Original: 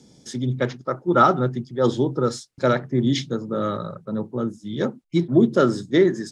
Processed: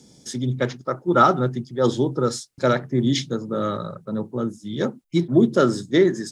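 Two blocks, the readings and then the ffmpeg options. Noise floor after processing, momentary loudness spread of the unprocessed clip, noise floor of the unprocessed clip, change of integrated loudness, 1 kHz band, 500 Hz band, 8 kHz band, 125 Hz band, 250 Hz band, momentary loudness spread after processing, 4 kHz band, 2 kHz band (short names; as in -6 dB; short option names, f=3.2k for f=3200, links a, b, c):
-53 dBFS, 11 LU, -54 dBFS, 0.0 dB, 0.0 dB, 0.0 dB, +4.0 dB, 0.0 dB, 0.0 dB, 11 LU, +2.0 dB, +0.5 dB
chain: -af "highshelf=f=7.1k:g=9"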